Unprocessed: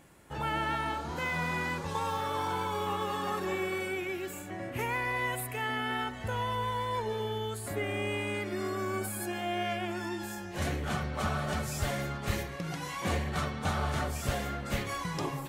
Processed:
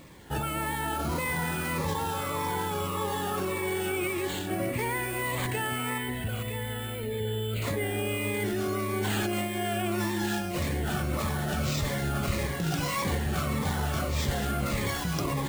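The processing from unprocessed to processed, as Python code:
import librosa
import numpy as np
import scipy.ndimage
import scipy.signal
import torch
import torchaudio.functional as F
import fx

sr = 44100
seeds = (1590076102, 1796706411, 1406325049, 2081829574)

p1 = fx.over_compress(x, sr, threshold_db=-37.0, ratio=-0.5)
p2 = x + F.gain(torch.from_numpy(p1), 0.0).numpy()
p3 = fx.sample_hold(p2, sr, seeds[0], rate_hz=11000.0, jitter_pct=0)
p4 = fx.fixed_phaser(p3, sr, hz=2500.0, stages=4, at=(5.98, 7.62))
p5 = p4 + 10.0 ** (-10.0 / 20.0) * np.pad(p4, (int(963 * sr / 1000.0), 0))[:len(p4)]
p6 = fx.notch_cascade(p5, sr, direction='falling', hz=1.7)
y = F.gain(torch.from_numpy(p6), 1.0).numpy()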